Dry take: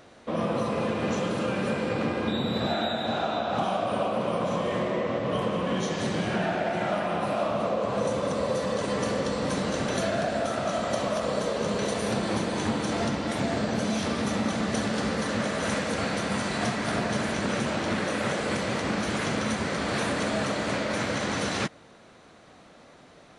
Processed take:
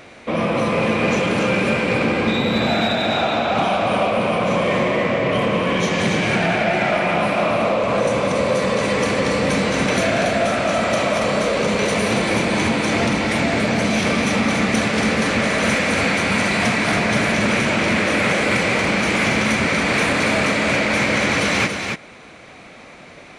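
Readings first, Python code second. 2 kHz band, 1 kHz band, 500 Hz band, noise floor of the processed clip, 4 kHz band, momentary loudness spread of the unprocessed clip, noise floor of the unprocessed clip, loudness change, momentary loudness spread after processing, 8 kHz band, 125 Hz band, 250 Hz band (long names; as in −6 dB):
+13.5 dB, +8.5 dB, +8.5 dB, −42 dBFS, +10.0 dB, 1 LU, −52 dBFS, +9.5 dB, 2 LU, +8.5 dB, +8.0 dB, +8.5 dB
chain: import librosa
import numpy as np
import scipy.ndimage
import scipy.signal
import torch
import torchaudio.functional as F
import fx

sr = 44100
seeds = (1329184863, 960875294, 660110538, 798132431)

p1 = fx.peak_eq(x, sr, hz=2300.0, db=11.5, octaves=0.42)
p2 = 10.0 ** (-20.0 / 20.0) * np.tanh(p1 / 10.0 ** (-20.0 / 20.0))
p3 = p2 + fx.echo_single(p2, sr, ms=281, db=-5.5, dry=0)
y = p3 * 10.0 ** (8.5 / 20.0)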